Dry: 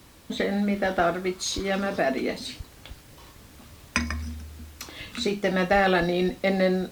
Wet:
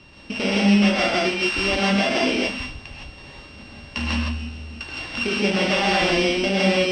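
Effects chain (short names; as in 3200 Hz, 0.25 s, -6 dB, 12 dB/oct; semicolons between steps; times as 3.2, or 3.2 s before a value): sample sorter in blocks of 16 samples; LPF 4700 Hz 24 dB/oct; high shelf 2600 Hz +10 dB; limiter -16 dBFS, peak gain reduction 11 dB; non-linear reverb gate 0.19 s rising, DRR -4 dB; gain +1.5 dB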